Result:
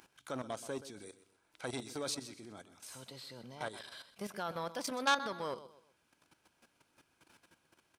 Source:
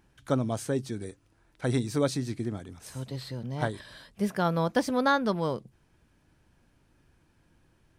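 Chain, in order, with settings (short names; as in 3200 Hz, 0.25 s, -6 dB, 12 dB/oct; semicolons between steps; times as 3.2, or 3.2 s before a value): notch 1800 Hz, Q 7.7; upward compressor, threshold -45 dBFS; HPF 930 Hz 6 dB/oct; level quantiser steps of 13 dB; on a send: feedback echo 0.126 s, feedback 34%, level -15.5 dB; on the sum: core saturation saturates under 2600 Hz; gain +2 dB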